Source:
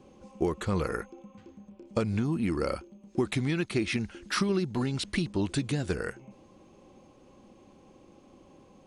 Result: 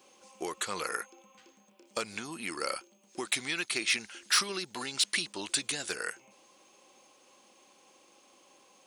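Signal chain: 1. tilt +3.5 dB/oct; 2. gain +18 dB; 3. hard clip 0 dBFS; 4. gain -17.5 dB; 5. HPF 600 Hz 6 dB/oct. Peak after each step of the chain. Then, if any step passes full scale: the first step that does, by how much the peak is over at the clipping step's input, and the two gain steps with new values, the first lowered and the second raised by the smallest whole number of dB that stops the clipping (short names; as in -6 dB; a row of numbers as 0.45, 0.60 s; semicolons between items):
-11.0, +7.0, 0.0, -17.5, -15.5 dBFS; step 2, 7.0 dB; step 2 +11 dB, step 4 -10.5 dB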